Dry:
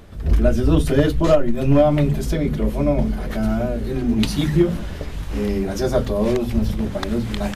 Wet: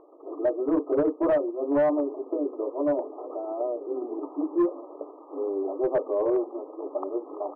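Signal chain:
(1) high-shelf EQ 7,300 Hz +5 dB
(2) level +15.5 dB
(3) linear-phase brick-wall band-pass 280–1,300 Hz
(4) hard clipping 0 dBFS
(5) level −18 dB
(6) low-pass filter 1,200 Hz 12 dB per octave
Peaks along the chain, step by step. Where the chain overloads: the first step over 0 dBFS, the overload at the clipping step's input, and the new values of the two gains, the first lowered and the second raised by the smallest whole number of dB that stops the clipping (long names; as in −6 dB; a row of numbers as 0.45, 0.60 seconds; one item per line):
−5.0, +10.5, +10.0, 0.0, −18.0, −17.5 dBFS
step 2, 10.0 dB
step 2 +5.5 dB, step 5 −8 dB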